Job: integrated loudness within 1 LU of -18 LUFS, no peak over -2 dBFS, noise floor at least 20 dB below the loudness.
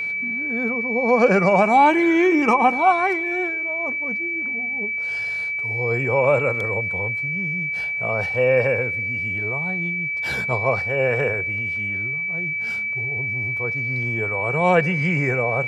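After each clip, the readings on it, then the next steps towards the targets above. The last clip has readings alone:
steady tone 2.3 kHz; tone level -23 dBFS; loudness -20.5 LUFS; peak level -3.5 dBFS; loudness target -18.0 LUFS
-> band-stop 2.3 kHz, Q 30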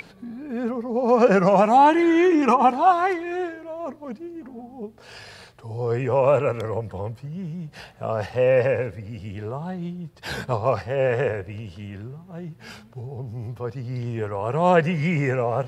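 steady tone not found; loudness -21.5 LUFS; peak level -4.5 dBFS; loudness target -18.0 LUFS
-> trim +3.5 dB; peak limiter -2 dBFS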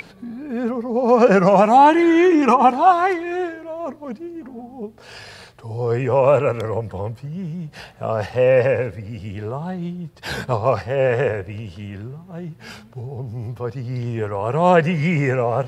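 loudness -18.0 LUFS; peak level -2.0 dBFS; noise floor -45 dBFS

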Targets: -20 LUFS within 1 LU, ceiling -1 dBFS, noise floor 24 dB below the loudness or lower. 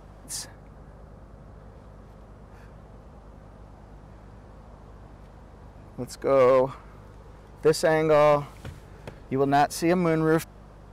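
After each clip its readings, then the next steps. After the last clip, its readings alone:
clipped samples 0.5%; clipping level -13.5 dBFS; hum 50 Hz; highest harmonic 200 Hz; hum level -47 dBFS; loudness -23.0 LUFS; peak level -13.5 dBFS; loudness target -20.0 LUFS
-> clip repair -13.5 dBFS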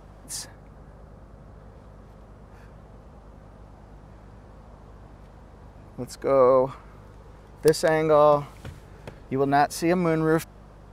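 clipped samples 0.0%; hum 50 Hz; highest harmonic 200 Hz; hum level -47 dBFS
-> de-hum 50 Hz, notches 4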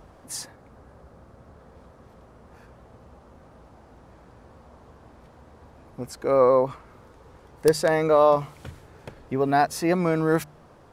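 hum not found; loudness -22.5 LUFS; peak level -5.0 dBFS; loudness target -20.0 LUFS
-> trim +2.5 dB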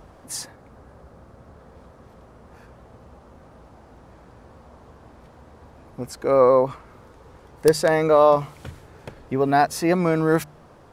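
loudness -20.0 LUFS; peak level -2.5 dBFS; noise floor -50 dBFS

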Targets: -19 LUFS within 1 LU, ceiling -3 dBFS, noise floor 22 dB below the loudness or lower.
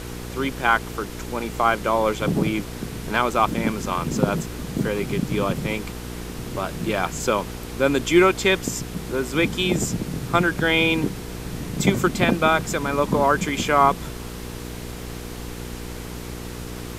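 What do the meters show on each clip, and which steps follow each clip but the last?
hum 60 Hz; highest harmonic 480 Hz; hum level -33 dBFS; noise floor -34 dBFS; noise floor target -45 dBFS; loudness -22.5 LUFS; peak level -4.0 dBFS; loudness target -19.0 LUFS
-> de-hum 60 Hz, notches 8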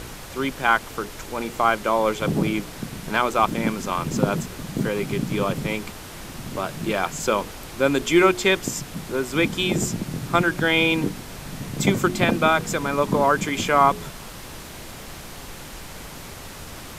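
hum not found; noise floor -39 dBFS; noise floor target -45 dBFS
-> noise print and reduce 6 dB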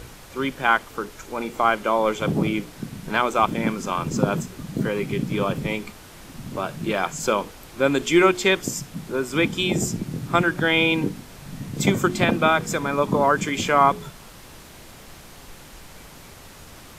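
noise floor -44 dBFS; noise floor target -45 dBFS
-> noise print and reduce 6 dB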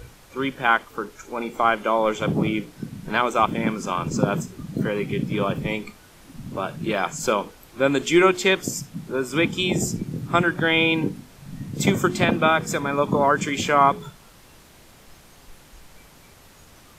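noise floor -50 dBFS; loudness -22.5 LUFS; peak level -3.5 dBFS; loudness target -19.0 LUFS
-> trim +3.5 dB; peak limiter -3 dBFS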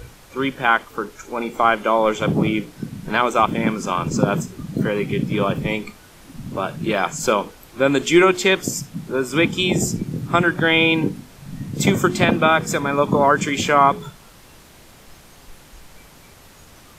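loudness -19.5 LUFS; peak level -3.0 dBFS; noise floor -47 dBFS

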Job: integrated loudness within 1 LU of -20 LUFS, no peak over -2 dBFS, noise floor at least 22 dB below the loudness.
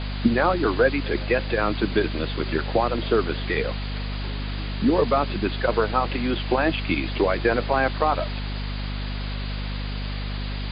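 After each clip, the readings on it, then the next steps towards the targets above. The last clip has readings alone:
hum 50 Hz; highest harmonic 250 Hz; hum level -27 dBFS; noise floor -29 dBFS; noise floor target -47 dBFS; loudness -24.5 LUFS; peak level -6.5 dBFS; loudness target -20.0 LUFS
-> de-hum 50 Hz, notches 5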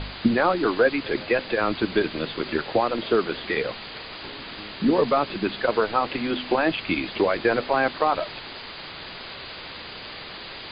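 hum not found; noise floor -39 dBFS; noise floor target -46 dBFS
-> noise print and reduce 7 dB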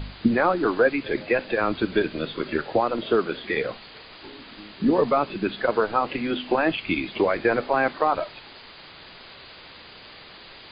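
noise floor -46 dBFS; loudness -24.0 LUFS; peak level -7.0 dBFS; loudness target -20.0 LUFS
-> trim +4 dB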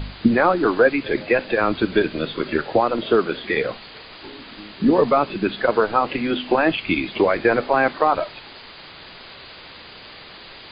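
loudness -20.0 LUFS; peak level -3.5 dBFS; noise floor -42 dBFS

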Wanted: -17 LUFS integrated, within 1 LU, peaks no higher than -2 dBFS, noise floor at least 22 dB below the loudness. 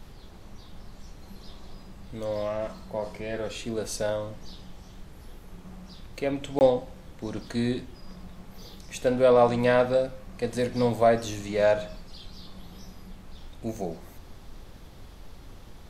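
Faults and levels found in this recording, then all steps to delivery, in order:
dropouts 1; longest dropout 19 ms; noise floor -47 dBFS; noise floor target -49 dBFS; loudness -27.0 LUFS; peak level -7.5 dBFS; loudness target -17.0 LUFS
-> interpolate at 6.59 s, 19 ms; noise print and reduce 6 dB; trim +10 dB; peak limiter -2 dBFS

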